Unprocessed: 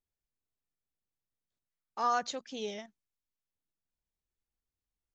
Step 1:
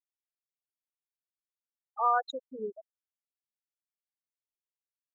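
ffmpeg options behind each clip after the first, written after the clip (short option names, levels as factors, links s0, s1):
-af "lowshelf=f=150:t=q:w=1.5:g=12.5,afftfilt=real='re*gte(hypot(re,im),0.0562)':imag='im*gte(hypot(re,im),0.0562)':win_size=1024:overlap=0.75,volume=1.58"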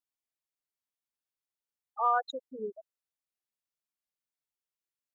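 -af "acontrast=48,volume=0.473"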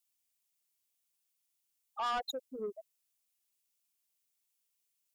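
-filter_complex "[0:a]acrossover=split=320[s0][s1];[s1]aexciter=amount=1.3:drive=9.4:freq=2300[s2];[s0][s2]amix=inputs=2:normalize=0,asoftclip=type=tanh:threshold=0.0282"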